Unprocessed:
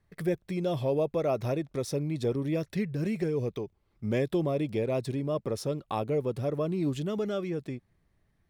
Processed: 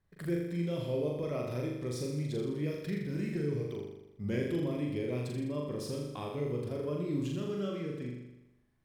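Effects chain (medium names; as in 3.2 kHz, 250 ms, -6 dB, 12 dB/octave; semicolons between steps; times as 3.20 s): dynamic bell 780 Hz, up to -8 dB, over -45 dBFS, Q 1.5; flutter echo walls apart 6.7 m, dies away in 0.91 s; tape speed -4%; trim -6.5 dB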